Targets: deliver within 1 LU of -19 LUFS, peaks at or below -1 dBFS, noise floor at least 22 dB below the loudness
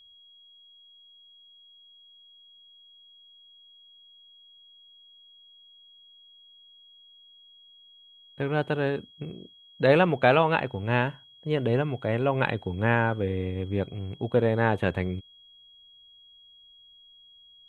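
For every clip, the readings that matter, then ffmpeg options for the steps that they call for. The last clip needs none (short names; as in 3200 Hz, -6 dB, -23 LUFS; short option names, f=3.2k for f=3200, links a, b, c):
steady tone 3300 Hz; tone level -52 dBFS; loudness -26.0 LUFS; peak -5.0 dBFS; loudness target -19.0 LUFS
-> -af "bandreject=f=3.3k:w=30"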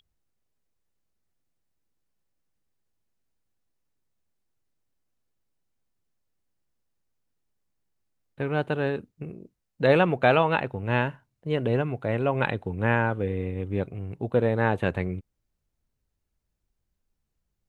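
steady tone none; loudness -26.0 LUFS; peak -5.0 dBFS; loudness target -19.0 LUFS
-> -af "volume=7dB,alimiter=limit=-1dB:level=0:latency=1"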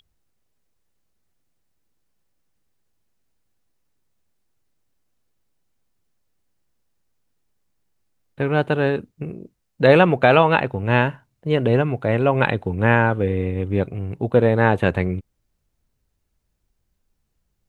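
loudness -19.0 LUFS; peak -1.0 dBFS; noise floor -73 dBFS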